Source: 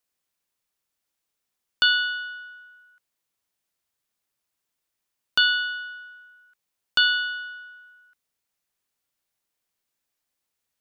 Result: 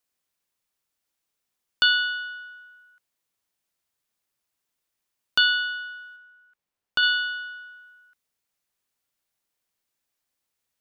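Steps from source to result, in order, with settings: 6.16–7.03 high shelf 3200 Hz -9.5 dB

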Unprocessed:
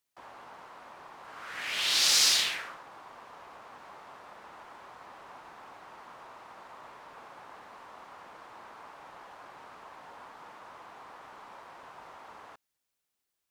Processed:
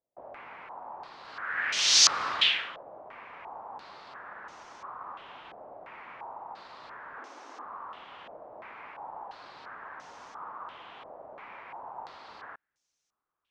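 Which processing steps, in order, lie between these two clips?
7.18–7.65 resonant low shelf 200 Hz -11 dB, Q 3; stepped low-pass 2.9 Hz 620–6100 Hz

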